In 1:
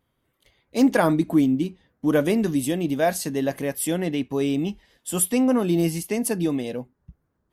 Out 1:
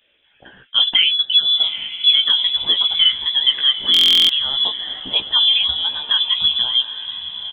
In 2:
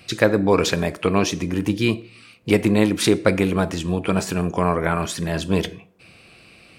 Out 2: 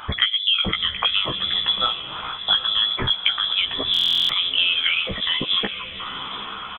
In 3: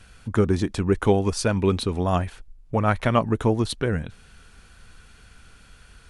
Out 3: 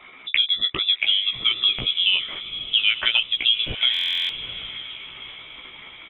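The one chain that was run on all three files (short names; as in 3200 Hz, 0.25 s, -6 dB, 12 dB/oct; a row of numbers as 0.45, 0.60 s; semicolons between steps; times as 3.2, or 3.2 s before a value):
formant sharpening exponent 1.5; HPF 450 Hz 12 dB/oct; wow and flutter 19 cents; compressor 4:1, threshold -35 dBFS; doubler 16 ms -3.5 dB; diffused feedback echo 0.832 s, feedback 41%, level -11 dB; inverted band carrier 3700 Hz; stuck buffer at 3.92, samples 1024, times 15; normalise peaks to -3 dBFS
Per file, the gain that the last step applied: +18.5, +14.0, +15.0 dB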